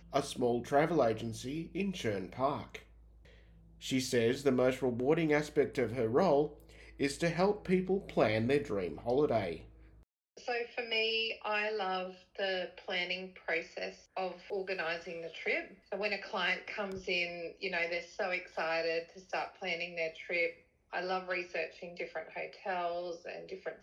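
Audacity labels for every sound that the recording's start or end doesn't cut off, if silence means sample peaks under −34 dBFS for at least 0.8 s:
3.850000	9.530000	sound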